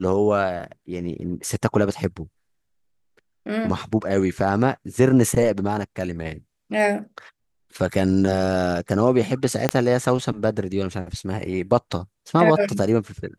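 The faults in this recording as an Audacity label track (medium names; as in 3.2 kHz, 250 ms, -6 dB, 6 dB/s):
9.690000	9.690000	pop -4 dBFS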